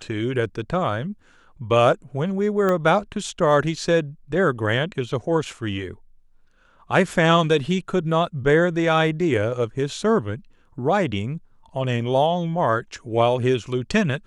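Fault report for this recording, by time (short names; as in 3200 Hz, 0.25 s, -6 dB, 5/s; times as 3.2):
2.69 pop -11 dBFS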